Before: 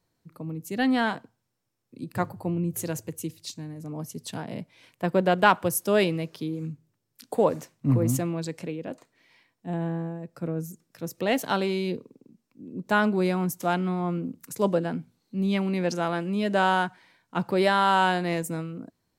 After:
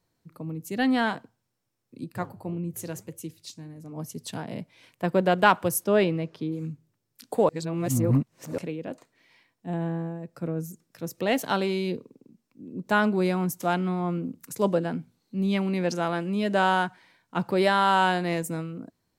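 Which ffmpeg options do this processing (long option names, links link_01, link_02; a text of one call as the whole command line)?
ffmpeg -i in.wav -filter_complex "[0:a]asplit=3[link_01][link_02][link_03];[link_01]afade=type=out:start_time=2.06:duration=0.02[link_04];[link_02]flanger=delay=4.4:depth=6.3:regen=-85:speed=1.9:shape=sinusoidal,afade=type=in:start_time=2.06:duration=0.02,afade=type=out:start_time=3.96:duration=0.02[link_05];[link_03]afade=type=in:start_time=3.96:duration=0.02[link_06];[link_04][link_05][link_06]amix=inputs=3:normalize=0,asettb=1/sr,asplit=3[link_07][link_08][link_09];[link_07]atrim=end=5.844[link_10];[link_08]atrim=start=5.84:end=6.52,asetpts=PTS-STARTPTS,afade=type=in:duration=0.004:curve=qsin,afade=type=out:start_time=0.676:duration=0.004:curve=qsin,aemphasis=mode=reproduction:type=75fm[link_11];[link_09]atrim=start=6.516[link_12];[link_10][link_11]acrossfade=duration=0.004:curve1=hsin:curve2=qsin[link_13];[link_13][link_12]acrossfade=duration=0.004:curve1=qsin:curve2=hsin,asplit=3[link_14][link_15][link_16];[link_14]atrim=end=7.492[link_17];[link_15]atrim=start=7.488:end=8.582,asetpts=PTS-STARTPTS,areverse[link_18];[link_16]atrim=start=8.578[link_19];[link_17][link_18]acrossfade=duration=0.004:curve1=hsin:curve2=hsin[link_20];[link_20][link_19]acrossfade=duration=0.004:curve1=hsin:curve2=hsin" out.wav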